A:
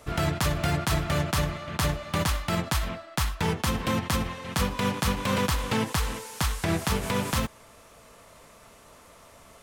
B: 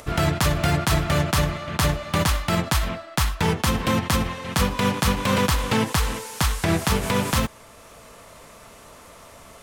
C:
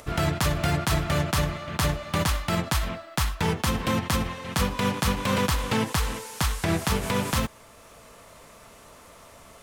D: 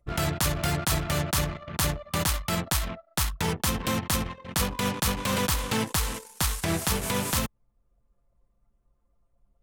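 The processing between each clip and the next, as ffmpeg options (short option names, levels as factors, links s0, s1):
-af "acompressor=mode=upward:threshold=0.00501:ratio=2.5,volume=1.78"
-af "acrusher=bits=10:mix=0:aa=0.000001,volume=0.668"
-af "aeval=exprs='clip(val(0),-1,0.0891)':c=same,aemphasis=mode=production:type=cd,anlmdn=15.8,volume=0.794"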